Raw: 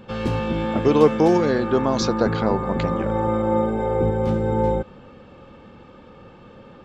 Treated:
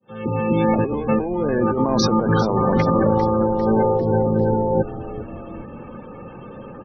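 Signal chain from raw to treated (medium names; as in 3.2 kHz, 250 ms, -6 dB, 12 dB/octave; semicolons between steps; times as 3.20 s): fade-in on the opening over 0.72 s; spectral gate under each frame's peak -20 dB strong; high-pass 99 Hz 24 dB/octave; compressor with a negative ratio -24 dBFS, ratio -1; frequency-shifting echo 399 ms, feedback 56%, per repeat -100 Hz, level -14 dB; trim +5 dB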